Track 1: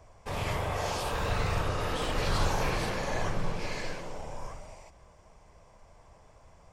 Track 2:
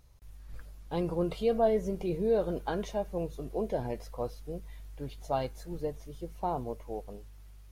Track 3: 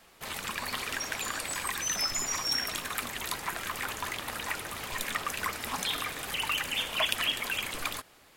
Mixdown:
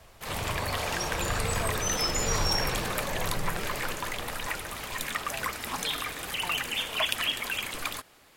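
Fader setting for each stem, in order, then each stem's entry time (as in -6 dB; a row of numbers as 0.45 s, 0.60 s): -1.5 dB, -12.0 dB, +0.5 dB; 0.00 s, 0.00 s, 0.00 s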